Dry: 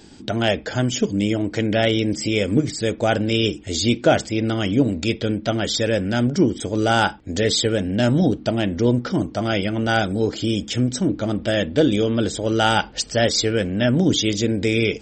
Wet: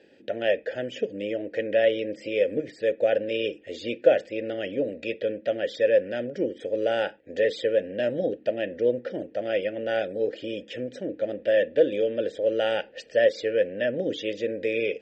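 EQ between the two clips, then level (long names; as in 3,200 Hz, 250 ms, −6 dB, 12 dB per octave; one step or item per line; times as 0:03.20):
formant filter e
high-shelf EQ 4,800 Hz −7 dB
+5.5 dB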